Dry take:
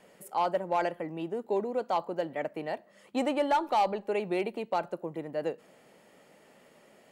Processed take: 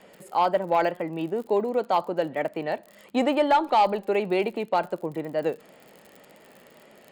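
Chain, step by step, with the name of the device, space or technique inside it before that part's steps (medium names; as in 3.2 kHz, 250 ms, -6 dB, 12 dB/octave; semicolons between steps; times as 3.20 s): lo-fi chain (low-pass 5.2 kHz 12 dB/octave; wow and flutter; crackle 53 per s -46 dBFS); treble shelf 8.7 kHz +9.5 dB; band-stop 5.8 kHz, Q 6.6; trim +6 dB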